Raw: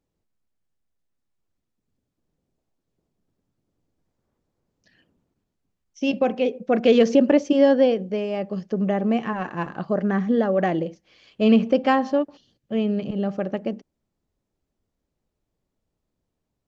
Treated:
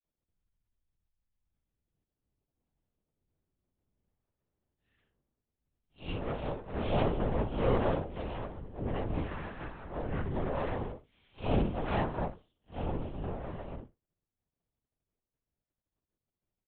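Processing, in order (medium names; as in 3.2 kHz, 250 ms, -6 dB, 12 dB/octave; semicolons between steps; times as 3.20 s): spectral blur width 109 ms; phase dispersion lows, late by 55 ms, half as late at 1.7 kHz; half-wave rectifier; harmony voices +7 st -8 dB; LPC vocoder at 8 kHz whisper; trim -8.5 dB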